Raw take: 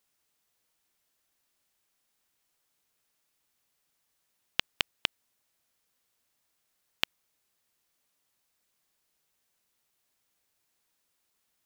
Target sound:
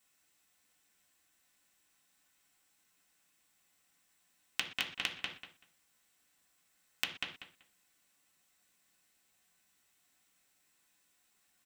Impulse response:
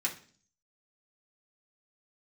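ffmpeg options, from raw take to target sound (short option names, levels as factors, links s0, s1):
-filter_complex "[0:a]asplit=2[s0][s1];[s1]adelay=191,lowpass=f=4100:p=1,volume=0.422,asplit=2[s2][s3];[s3]adelay=191,lowpass=f=4100:p=1,volume=0.18,asplit=2[s4][s5];[s5]adelay=191,lowpass=f=4100:p=1,volume=0.18[s6];[s0][s2][s4][s6]amix=inputs=4:normalize=0[s7];[1:a]atrim=start_sample=2205,afade=t=out:st=0.18:d=0.01,atrim=end_sample=8379[s8];[s7][s8]afir=irnorm=-1:irlink=0,acompressor=threshold=0.0282:ratio=10,bandreject=f=950:w=22"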